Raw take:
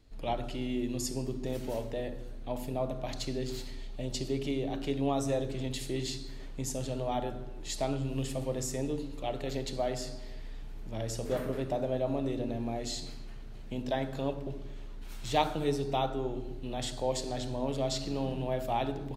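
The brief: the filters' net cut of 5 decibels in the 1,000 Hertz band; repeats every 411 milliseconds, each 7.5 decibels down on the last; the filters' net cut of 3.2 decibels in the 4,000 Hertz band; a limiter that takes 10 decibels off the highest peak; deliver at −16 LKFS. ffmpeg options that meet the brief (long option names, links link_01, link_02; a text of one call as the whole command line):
ffmpeg -i in.wav -af "equalizer=frequency=1000:width_type=o:gain=-7.5,equalizer=frequency=4000:width_type=o:gain=-3.5,alimiter=level_in=2dB:limit=-24dB:level=0:latency=1,volume=-2dB,aecho=1:1:411|822|1233|1644|2055:0.422|0.177|0.0744|0.0312|0.0131,volume=21dB" out.wav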